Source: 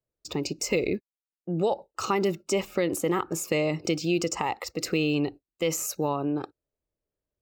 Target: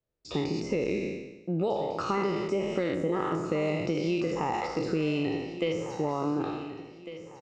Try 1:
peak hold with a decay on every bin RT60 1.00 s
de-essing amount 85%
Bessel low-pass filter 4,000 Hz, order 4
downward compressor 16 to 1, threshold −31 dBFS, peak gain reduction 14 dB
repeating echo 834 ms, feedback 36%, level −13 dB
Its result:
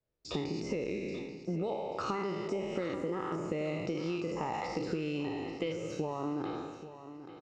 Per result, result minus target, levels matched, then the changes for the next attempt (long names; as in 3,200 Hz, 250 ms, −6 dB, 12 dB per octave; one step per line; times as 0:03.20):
echo 617 ms early; downward compressor: peak gain reduction +6.5 dB
change: repeating echo 1,451 ms, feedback 36%, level −13 dB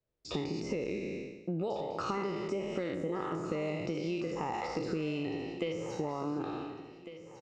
downward compressor: peak gain reduction +6.5 dB
change: downward compressor 16 to 1, threshold −24 dBFS, peak gain reduction 7.5 dB